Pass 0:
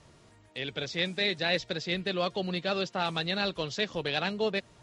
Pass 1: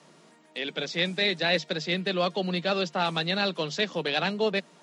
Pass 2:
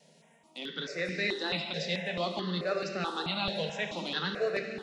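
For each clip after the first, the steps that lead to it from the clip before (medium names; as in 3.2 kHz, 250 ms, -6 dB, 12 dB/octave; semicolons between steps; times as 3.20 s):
Chebyshev high-pass 150 Hz, order 8; trim +4 dB
wow and flutter 24 cents; plate-style reverb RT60 2.7 s, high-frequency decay 0.85×, DRR 3 dB; stepped phaser 4.6 Hz 320–3400 Hz; trim -3.5 dB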